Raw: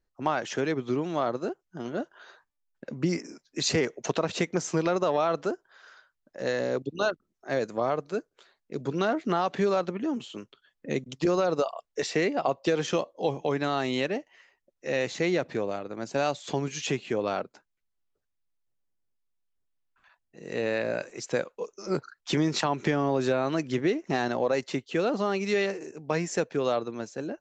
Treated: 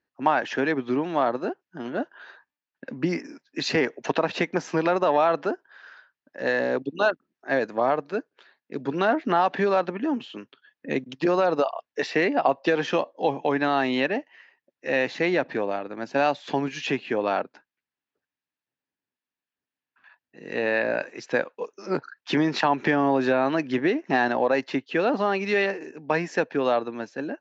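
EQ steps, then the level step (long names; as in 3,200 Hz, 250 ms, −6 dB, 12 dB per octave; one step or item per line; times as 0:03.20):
dynamic equaliser 760 Hz, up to +5 dB, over −38 dBFS, Q 1.2
loudspeaker in its box 140–5,200 Hz, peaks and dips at 270 Hz +6 dB, 900 Hz +4 dB, 1,700 Hz +9 dB, 2,600 Hz +5 dB
0.0 dB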